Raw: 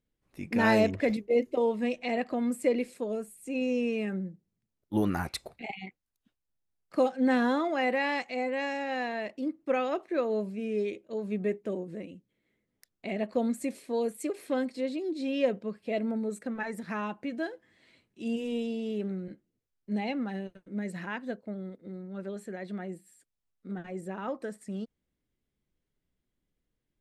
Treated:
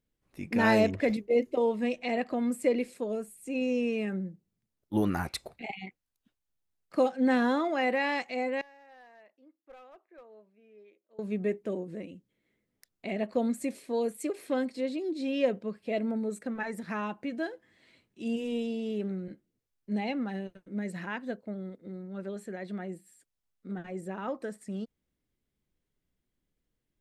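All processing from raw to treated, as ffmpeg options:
-filter_complex "[0:a]asettb=1/sr,asplit=3[s0][s1][s2];[s0]atrim=end=8.614[s3];[s1]atrim=start=8.61:end=11.19,asetpts=PTS-STARTPTS,afade=t=in:d=0.004:c=qsin,afade=t=out:st=2.576:d=0.004:c=qsin,lowpass=1100,aderivative,aeval=exprs='clip(val(0),-1,0.00422)':c=same[s4];[s2]atrim=start=11.186[s5];[s3][s4]acrossfade=d=0.004:c1=hsin:c2=qsin[s6];[s6][s5]acrossfade=d=0.004:c1=qsin:c2=hsin"

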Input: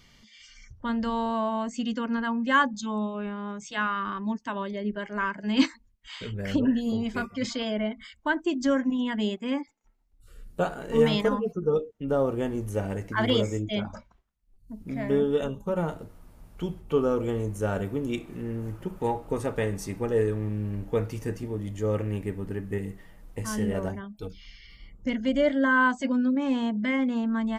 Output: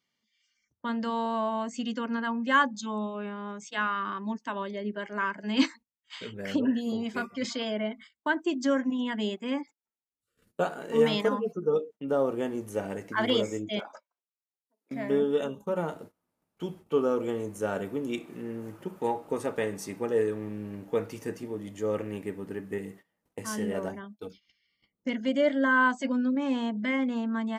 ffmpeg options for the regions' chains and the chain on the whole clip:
-filter_complex "[0:a]asettb=1/sr,asplit=3[s0][s1][s2];[s0]atrim=end=13.794[s3];[s1]atrim=start=13.79:end=14.91,asetpts=PTS-STARTPTS,afade=t=in:d=0.004:c=qsin,afade=t=out:st=1.116:d=0.004:c=qsin,highpass=f=430:w=0.5412,highpass=f=430:w=1.3066,volume=31.6,asoftclip=hard,volume=0.0316[s4];[s2]atrim=start=14.906[s5];[s3][s4]acrossfade=d=0.004:c1=hsin:c2=qsin[s6];[s6][s5]acrossfade=d=0.004:c1=qsin:c2=hsin,agate=range=0.0891:threshold=0.00794:ratio=16:detection=peak,highpass=210,volume=0.891"

